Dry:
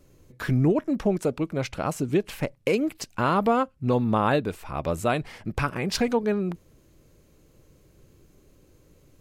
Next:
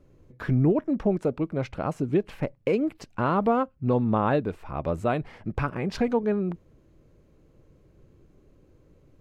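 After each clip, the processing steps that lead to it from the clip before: LPF 1300 Hz 6 dB/oct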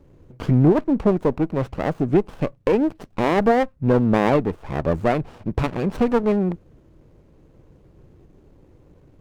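dynamic EQ 3800 Hz, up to -6 dB, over -51 dBFS, Q 1.2; running maximum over 17 samples; gain +6.5 dB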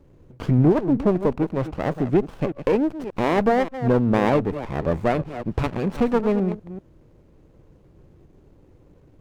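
reverse delay 0.194 s, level -11.5 dB; gain -1.5 dB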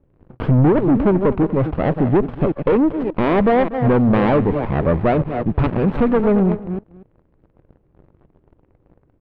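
sample leveller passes 3; air absorption 470 m; echo 0.241 s -17.5 dB; gain -1 dB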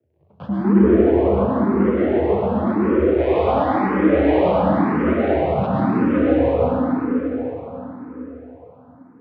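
frequency shift +69 Hz; plate-style reverb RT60 4.8 s, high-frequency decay 0.75×, pre-delay 95 ms, DRR -8.5 dB; endless phaser +0.95 Hz; gain -7 dB

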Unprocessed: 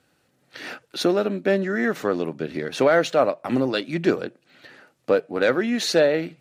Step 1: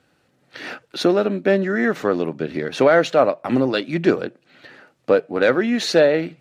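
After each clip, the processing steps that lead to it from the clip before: high shelf 7000 Hz -9.5 dB; gain +3.5 dB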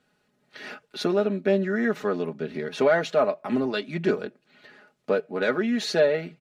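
comb 4.8 ms, depth 68%; gain -8 dB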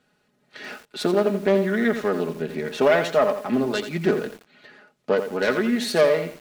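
self-modulated delay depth 0.14 ms; lo-fi delay 85 ms, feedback 35%, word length 7-bit, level -9 dB; gain +2.5 dB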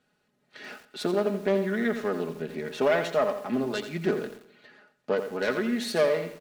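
feedback echo 0.132 s, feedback 35%, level -18.5 dB; gain -5.5 dB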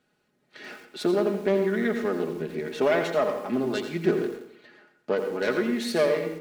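small resonant body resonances 340/2200 Hz, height 6 dB; on a send at -9.5 dB: reverb RT60 0.50 s, pre-delay 0.1 s

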